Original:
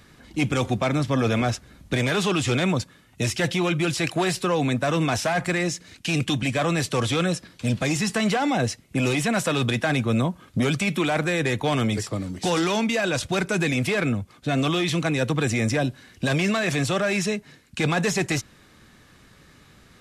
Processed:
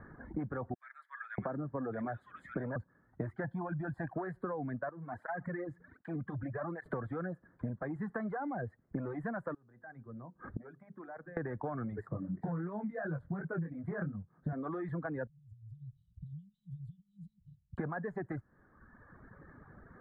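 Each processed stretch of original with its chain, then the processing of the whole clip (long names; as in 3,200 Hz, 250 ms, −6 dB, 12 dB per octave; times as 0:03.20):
0:00.74–0:02.76: high-pass filter 130 Hz + multiband delay without the direct sound highs, lows 640 ms, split 1,800 Hz
0:03.44–0:04.14: parametric band 2,100 Hz −5 dB 0.72 octaves + comb filter 1.2 ms, depth 69%
0:04.89–0:06.86: downward compressor 2 to 1, threshold −35 dBFS + through-zero flanger with one copy inverted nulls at 1.3 Hz, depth 5.2 ms
0:09.54–0:11.37: mu-law and A-law mismatch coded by mu + mains-hum notches 50/100/150/200/250/300/350/400/450/500 Hz + gate with flip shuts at −20 dBFS, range −24 dB
0:12.08–0:14.53: parametric band 160 Hz +14.5 dB 0.59 octaves + chorus effect 2.9 Hz, delay 19 ms, depth 5.6 ms + highs frequency-modulated by the lows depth 0.16 ms
0:15.27–0:17.78: downward compressor 16 to 1, threshold −36 dBFS + linear-phase brick-wall band-stop 180–2,800 Hz
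whole clip: reverb reduction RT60 1.2 s; elliptic low-pass filter 1,700 Hz, stop band 40 dB; downward compressor 16 to 1, threshold −36 dBFS; level +1.5 dB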